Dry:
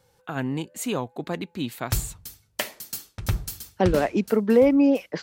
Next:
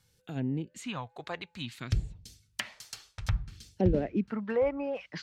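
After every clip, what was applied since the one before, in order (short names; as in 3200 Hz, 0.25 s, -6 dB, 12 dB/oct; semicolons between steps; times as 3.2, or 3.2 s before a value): phaser stages 2, 0.58 Hz, lowest notch 230–1200 Hz; treble ducked by the level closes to 1600 Hz, closed at -25.5 dBFS; gain -3 dB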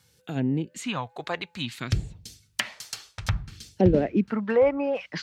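HPF 110 Hz 6 dB/oct; gain +7.5 dB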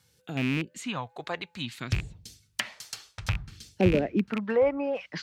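rattling part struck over -26 dBFS, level -18 dBFS; gain -3 dB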